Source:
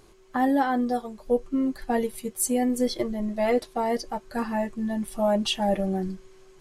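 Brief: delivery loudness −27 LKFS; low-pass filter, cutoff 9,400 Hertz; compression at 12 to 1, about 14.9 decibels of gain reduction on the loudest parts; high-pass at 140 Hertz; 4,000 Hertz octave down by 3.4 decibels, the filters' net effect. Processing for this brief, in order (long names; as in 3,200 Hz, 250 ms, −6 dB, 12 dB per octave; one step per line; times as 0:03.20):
high-pass filter 140 Hz
low-pass filter 9,400 Hz
parametric band 4,000 Hz −4.5 dB
downward compressor 12 to 1, threshold −33 dBFS
level +11 dB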